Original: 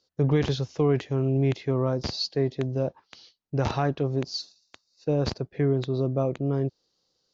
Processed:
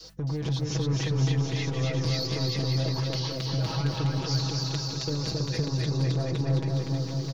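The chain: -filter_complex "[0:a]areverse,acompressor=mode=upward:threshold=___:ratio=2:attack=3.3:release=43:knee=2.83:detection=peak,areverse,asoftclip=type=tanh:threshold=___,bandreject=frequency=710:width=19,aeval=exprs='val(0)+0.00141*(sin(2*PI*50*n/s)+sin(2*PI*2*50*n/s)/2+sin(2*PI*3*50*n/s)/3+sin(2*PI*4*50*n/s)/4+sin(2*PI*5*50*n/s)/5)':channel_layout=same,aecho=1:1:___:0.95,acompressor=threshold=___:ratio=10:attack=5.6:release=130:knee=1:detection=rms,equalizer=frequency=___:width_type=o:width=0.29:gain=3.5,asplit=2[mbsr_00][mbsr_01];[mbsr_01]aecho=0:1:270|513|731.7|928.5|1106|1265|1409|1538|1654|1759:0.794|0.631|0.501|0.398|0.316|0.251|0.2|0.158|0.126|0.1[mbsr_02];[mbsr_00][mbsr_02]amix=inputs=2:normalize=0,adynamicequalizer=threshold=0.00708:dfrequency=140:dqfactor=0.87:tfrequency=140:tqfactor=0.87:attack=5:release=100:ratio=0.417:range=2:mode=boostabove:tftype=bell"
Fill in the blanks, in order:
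-25dB, -21dB, 6.2, -30dB, 5.6k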